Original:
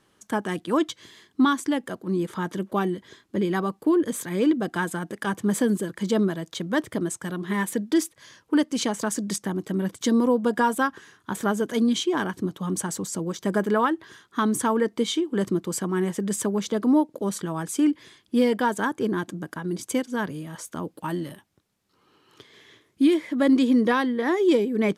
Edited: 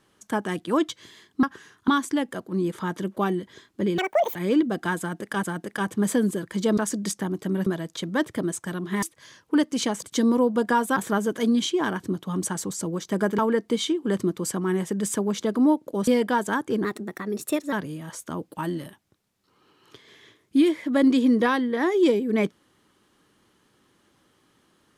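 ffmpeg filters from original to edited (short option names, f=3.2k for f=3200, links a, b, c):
-filter_complex "[0:a]asplit=15[a][b][c][d][e][f][g][h][i][j][k][l][m][n][o];[a]atrim=end=1.432[p];[b]atrim=start=10.848:end=11.302[q];[c]atrim=start=1.428:end=3.534[r];[d]atrim=start=3.53:end=4.26,asetpts=PTS-STARTPTS,asetrate=85995,aresample=44100,atrim=end_sample=16509,asetpts=PTS-STARTPTS[s];[e]atrim=start=4.256:end=5.342[t];[f]atrim=start=4.898:end=6.242[u];[g]atrim=start=9.018:end=9.912[v];[h]atrim=start=6.238:end=7.602[w];[i]atrim=start=8.018:end=9.022[x];[j]atrim=start=9.908:end=10.852[y];[k]atrim=start=11.298:end=13.722[z];[l]atrim=start=14.658:end=17.352[aa];[m]atrim=start=18.378:end=19.154[ab];[n]atrim=start=19.15:end=20.18,asetpts=PTS-STARTPTS,asetrate=51597,aresample=44100,atrim=end_sample=38823,asetpts=PTS-STARTPTS[ac];[o]atrim=start=20.176[ad];[p][q]acrossfade=d=0.004:c1=hsin:c2=hsin[ae];[ae][r]acrossfade=d=0.004:c1=hsin:c2=hsin[af];[af][s]acrossfade=d=0.004:c1=hsin:c2=hsin[ag];[ag][t]acrossfade=d=0.004:c1=hsin:c2=hsin[ah];[ah][u]acrossfade=d=0.004:c1=hsin:c2=hsin[ai];[ai][v]acrossfade=d=0.004:c1=hsin:c2=hsin[aj];[aj][w]acrossfade=d=0.004:c1=hsin:c2=hsin[ak];[ak][x]acrossfade=d=0.004:c1=hsin:c2=hsin[al];[al][y]acrossfade=d=0.004:c1=hsin:c2=hsin[am];[am][z]acrossfade=d=0.004:c1=hsin:c2=hsin[an];[an][aa]acrossfade=d=0.004:c1=hsin:c2=hsin[ao];[ao][ab]acrossfade=d=0.004:c1=hsin:c2=hsin[ap];[ap][ac]acrossfade=d=0.004:c1=hsin:c2=hsin[aq];[aq][ad]acrossfade=d=0.004:c1=hsin:c2=hsin"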